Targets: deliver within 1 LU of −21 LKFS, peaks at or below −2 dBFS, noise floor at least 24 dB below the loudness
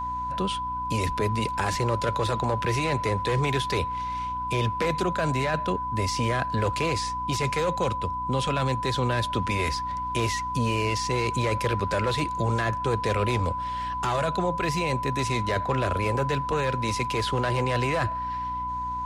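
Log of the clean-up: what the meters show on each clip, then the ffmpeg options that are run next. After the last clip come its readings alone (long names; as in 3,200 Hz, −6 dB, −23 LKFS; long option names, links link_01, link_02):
mains hum 60 Hz; hum harmonics up to 300 Hz; level of the hum −38 dBFS; interfering tone 1,000 Hz; level of the tone −28 dBFS; integrated loudness −26.5 LKFS; sample peak −11.5 dBFS; target loudness −21.0 LKFS
→ -af "bandreject=frequency=60:width_type=h:width=4,bandreject=frequency=120:width_type=h:width=4,bandreject=frequency=180:width_type=h:width=4,bandreject=frequency=240:width_type=h:width=4,bandreject=frequency=300:width_type=h:width=4"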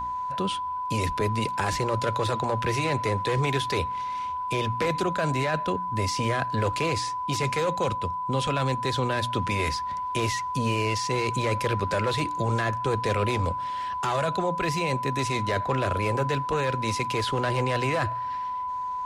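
mains hum none found; interfering tone 1,000 Hz; level of the tone −28 dBFS
→ -af "bandreject=frequency=1000:width=30"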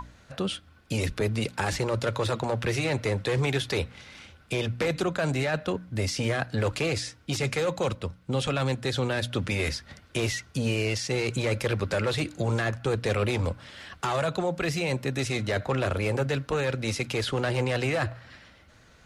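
interfering tone none found; integrated loudness −28.5 LKFS; sample peak −13.5 dBFS; target loudness −21.0 LKFS
→ -af "volume=7.5dB"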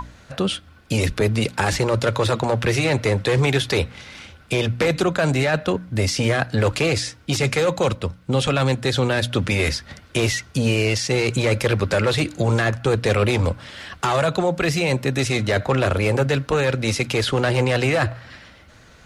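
integrated loudness −21.0 LKFS; sample peak −6.0 dBFS; background noise floor −49 dBFS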